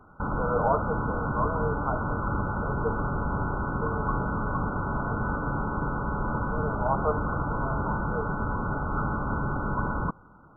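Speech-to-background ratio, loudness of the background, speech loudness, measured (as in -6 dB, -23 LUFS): -3.5 dB, -30.0 LUFS, -33.5 LUFS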